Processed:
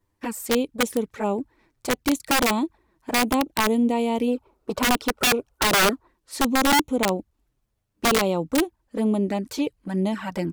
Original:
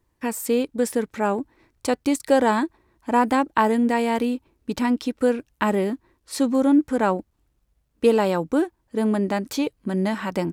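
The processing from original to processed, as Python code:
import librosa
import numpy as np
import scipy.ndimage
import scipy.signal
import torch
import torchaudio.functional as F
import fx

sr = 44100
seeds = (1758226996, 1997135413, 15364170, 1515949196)

y = fx.env_flanger(x, sr, rest_ms=10.2, full_db=-18.5)
y = fx.spec_box(y, sr, start_s=4.28, length_s=1.8, low_hz=370.0, high_hz=1500.0, gain_db=10)
y = (np.mod(10.0 ** (13.5 / 20.0) * y + 1.0, 2.0) - 1.0) / 10.0 ** (13.5 / 20.0)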